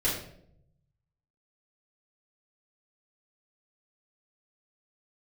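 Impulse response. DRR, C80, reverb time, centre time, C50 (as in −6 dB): −9.0 dB, 7.5 dB, 0.70 s, 43 ms, 4.0 dB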